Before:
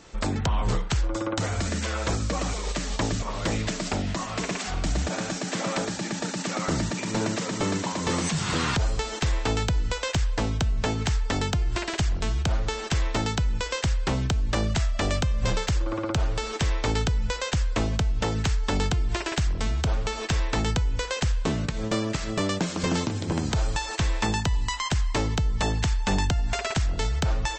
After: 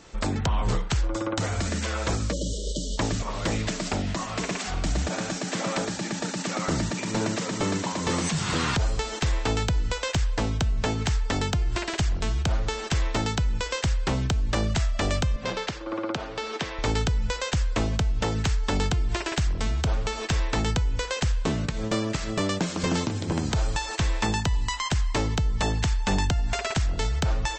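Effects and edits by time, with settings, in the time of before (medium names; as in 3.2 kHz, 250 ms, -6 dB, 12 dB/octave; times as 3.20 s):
2.33–2.98 s: spectral selection erased 640–2900 Hz
15.36–16.79 s: three-band isolator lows -20 dB, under 170 Hz, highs -18 dB, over 5.8 kHz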